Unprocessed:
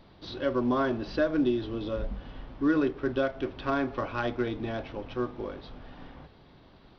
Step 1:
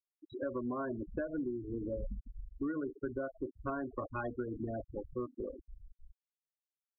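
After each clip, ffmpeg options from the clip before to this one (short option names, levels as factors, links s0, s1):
-af "bandreject=f=890:w=23,afftfilt=real='re*gte(hypot(re,im),0.0562)':imag='im*gte(hypot(re,im),0.0562)':win_size=1024:overlap=0.75,acompressor=threshold=0.0224:ratio=6,volume=0.841"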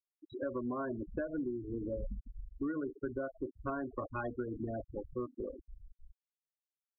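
-af anull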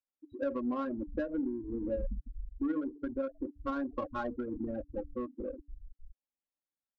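-af "aecho=1:1:3.7:0.88,bandreject=f=144.7:t=h:w=4,bandreject=f=289.4:t=h:w=4,adynamicsmooth=sensitivity=5:basefreq=1400"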